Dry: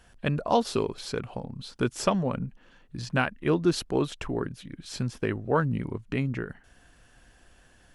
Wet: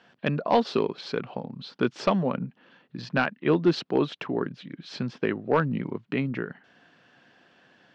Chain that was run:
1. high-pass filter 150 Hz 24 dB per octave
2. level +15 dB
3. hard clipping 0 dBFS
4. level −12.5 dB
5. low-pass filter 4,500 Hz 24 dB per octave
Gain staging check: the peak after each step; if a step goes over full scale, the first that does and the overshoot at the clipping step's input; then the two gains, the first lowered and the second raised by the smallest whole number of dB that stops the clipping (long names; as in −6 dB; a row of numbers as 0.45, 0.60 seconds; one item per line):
−7.5, +7.5, 0.0, −12.5, −11.5 dBFS
step 2, 7.5 dB
step 2 +7 dB, step 4 −4.5 dB